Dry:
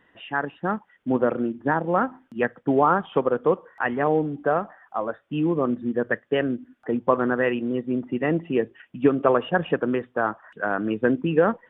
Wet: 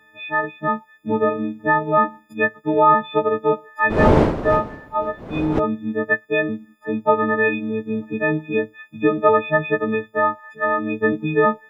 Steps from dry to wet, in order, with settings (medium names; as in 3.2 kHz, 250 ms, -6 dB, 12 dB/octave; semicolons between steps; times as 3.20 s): partials quantised in pitch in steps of 6 st; 3.89–5.58 s: wind noise 490 Hz -24 dBFS; trim +1 dB